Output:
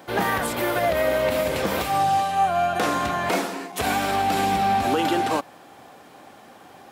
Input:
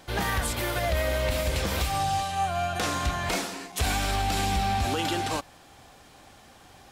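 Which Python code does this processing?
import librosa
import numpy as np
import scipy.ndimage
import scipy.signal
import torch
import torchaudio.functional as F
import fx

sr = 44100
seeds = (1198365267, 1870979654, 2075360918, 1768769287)

y = scipy.signal.sosfilt(scipy.signal.butter(2, 210.0, 'highpass', fs=sr, output='sos'), x)
y = fx.peak_eq(y, sr, hz=6100.0, db=-10.5, octaves=2.8)
y = y * librosa.db_to_amplitude(8.5)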